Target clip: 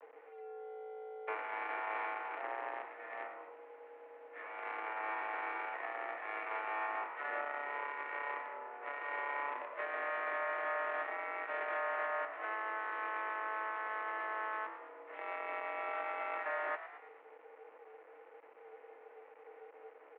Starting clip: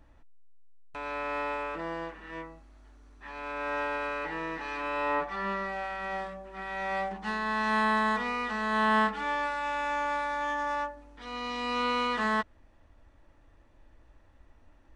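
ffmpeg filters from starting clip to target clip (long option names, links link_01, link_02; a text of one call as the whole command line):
ffmpeg -i in.wav -filter_complex "[0:a]equalizer=frequency=1000:width=2.2:gain=-6.5,acompressor=threshold=-44dB:ratio=2,asplit=2[link_01][link_02];[link_02]asetrate=55563,aresample=44100,atempo=0.793701,volume=-10dB[link_03];[link_01][link_03]amix=inputs=2:normalize=0,afreqshift=430,acrusher=bits=7:dc=4:mix=0:aa=0.000001,highpass=frequency=260:width_type=q:width=0.5412,highpass=frequency=260:width_type=q:width=1.307,lowpass=frequency=3000:width_type=q:width=0.5176,lowpass=frequency=3000:width_type=q:width=0.7071,lowpass=frequency=3000:width_type=q:width=1.932,afreqshift=160,asetrate=32667,aresample=44100,asplit=2[link_04][link_05];[link_05]asplit=5[link_06][link_07][link_08][link_09][link_10];[link_06]adelay=110,afreqshift=57,volume=-13dB[link_11];[link_07]adelay=220,afreqshift=114,volume=-19.4dB[link_12];[link_08]adelay=330,afreqshift=171,volume=-25.8dB[link_13];[link_09]adelay=440,afreqshift=228,volume=-32.1dB[link_14];[link_10]adelay=550,afreqshift=285,volume=-38.5dB[link_15];[link_11][link_12][link_13][link_14][link_15]amix=inputs=5:normalize=0[link_16];[link_04][link_16]amix=inputs=2:normalize=0,alimiter=level_in=8.5dB:limit=-24dB:level=0:latency=1:release=208,volume=-8.5dB,bandreject=frequency=1600:width=19,volume=4.5dB" out.wav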